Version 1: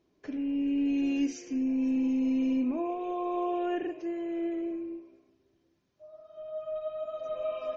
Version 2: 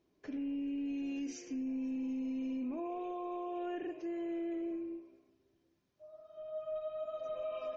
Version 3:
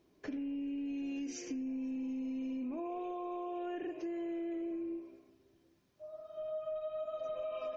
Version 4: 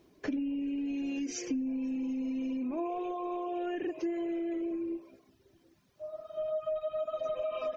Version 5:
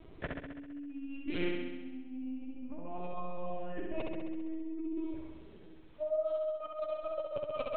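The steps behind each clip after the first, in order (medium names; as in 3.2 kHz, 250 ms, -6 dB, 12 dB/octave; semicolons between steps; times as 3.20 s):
peak limiter -29 dBFS, peak gain reduction 8.5 dB; trim -4 dB
compression, threshold -43 dBFS, peak gain reduction 7.5 dB; trim +6 dB
reverb removal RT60 0.78 s; trim +7.5 dB
LPC vocoder at 8 kHz pitch kept; compressor with a negative ratio -40 dBFS, ratio -0.5; flutter echo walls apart 11.3 m, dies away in 1.2 s; trim +1 dB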